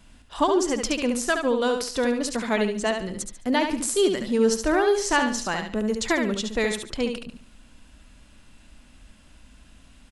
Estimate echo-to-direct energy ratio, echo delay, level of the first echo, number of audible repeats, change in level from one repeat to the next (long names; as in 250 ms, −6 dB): −5.5 dB, 71 ms, −6.0 dB, 3, −10.5 dB